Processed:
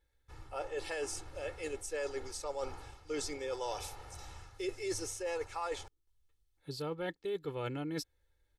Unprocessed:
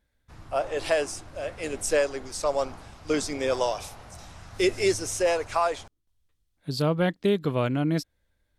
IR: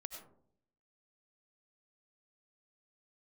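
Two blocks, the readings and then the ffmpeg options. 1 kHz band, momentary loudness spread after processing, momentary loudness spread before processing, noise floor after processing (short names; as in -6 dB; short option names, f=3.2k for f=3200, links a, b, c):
-12.0 dB, 11 LU, 16 LU, -76 dBFS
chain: -af "equalizer=f=130:t=o:w=0.99:g=-3,aecho=1:1:2.3:0.76,areverse,acompressor=threshold=-29dB:ratio=6,areverse,volume=-6dB"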